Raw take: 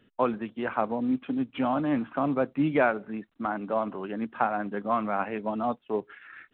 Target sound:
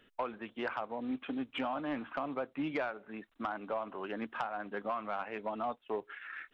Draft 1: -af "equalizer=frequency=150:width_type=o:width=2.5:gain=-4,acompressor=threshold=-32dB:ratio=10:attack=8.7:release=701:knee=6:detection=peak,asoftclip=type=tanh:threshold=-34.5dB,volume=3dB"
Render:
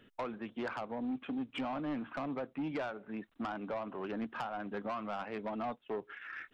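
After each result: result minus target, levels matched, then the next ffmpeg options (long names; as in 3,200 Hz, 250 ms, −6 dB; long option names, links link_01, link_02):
125 Hz band +5.0 dB; soft clipping: distortion +7 dB
-af "equalizer=frequency=150:width_type=o:width=2.5:gain=-12.5,acompressor=threshold=-32dB:ratio=10:attack=8.7:release=701:knee=6:detection=peak,asoftclip=type=tanh:threshold=-34.5dB,volume=3dB"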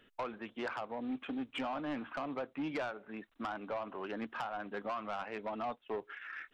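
soft clipping: distortion +7 dB
-af "equalizer=frequency=150:width_type=o:width=2.5:gain=-12.5,acompressor=threshold=-32dB:ratio=10:attack=8.7:release=701:knee=6:detection=peak,asoftclip=type=tanh:threshold=-27.5dB,volume=3dB"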